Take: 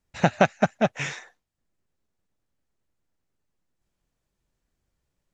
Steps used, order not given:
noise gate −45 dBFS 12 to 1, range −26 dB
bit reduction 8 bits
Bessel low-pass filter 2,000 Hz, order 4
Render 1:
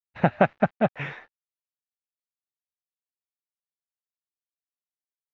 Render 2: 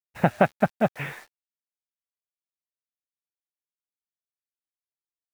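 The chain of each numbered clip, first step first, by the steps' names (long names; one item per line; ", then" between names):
bit reduction, then Bessel low-pass filter, then noise gate
Bessel low-pass filter, then bit reduction, then noise gate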